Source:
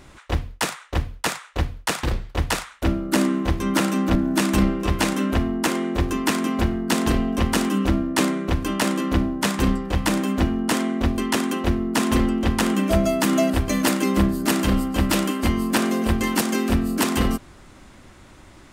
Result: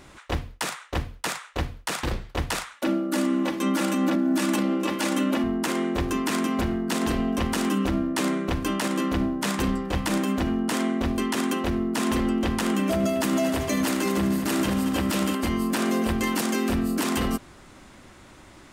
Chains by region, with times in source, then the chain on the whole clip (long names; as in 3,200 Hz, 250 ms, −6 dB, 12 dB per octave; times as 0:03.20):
0:02.76–0:05.44: high-pass filter 170 Hz 24 dB per octave + comb filter 3.5 ms, depth 62%
0:12.80–0:15.35: high-pass filter 77 Hz + echo machine with several playback heads 76 ms, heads all three, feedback 56%, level −17 dB
whole clip: low-shelf EQ 110 Hz −6.5 dB; brickwall limiter −15.5 dBFS